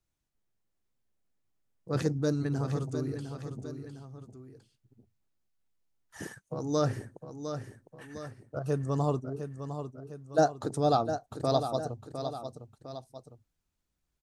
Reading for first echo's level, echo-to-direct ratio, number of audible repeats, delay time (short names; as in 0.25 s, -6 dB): -9.0 dB, -8.0 dB, 2, 0.706 s